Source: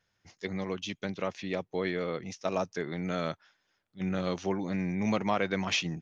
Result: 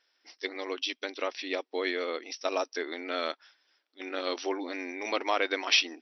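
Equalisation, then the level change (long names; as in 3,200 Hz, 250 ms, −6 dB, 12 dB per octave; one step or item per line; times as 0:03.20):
linear-phase brick-wall band-pass 250–5,900 Hz
high-shelf EQ 2,600 Hz +11 dB
0.0 dB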